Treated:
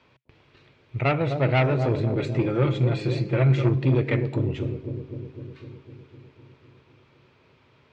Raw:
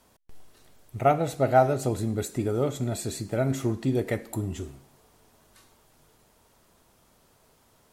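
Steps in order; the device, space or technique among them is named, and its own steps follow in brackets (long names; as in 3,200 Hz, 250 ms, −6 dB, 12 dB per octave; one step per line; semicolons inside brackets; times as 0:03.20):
0:02.16–0:03.69: comb filter 5.8 ms, depth 76%
analogue delay pedal into a guitar amplifier (bucket-brigade delay 253 ms, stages 1,024, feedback 69%, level −7 dB; tube saturation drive 20 dB, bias 0.45; loudspeaker in its box 79–4,000 Hz, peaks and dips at 130 Hz +8 dB, 210 Hz −7 dB, 720 Hz −8 dB, 2,400 Hz +9 dB)
level +5 dB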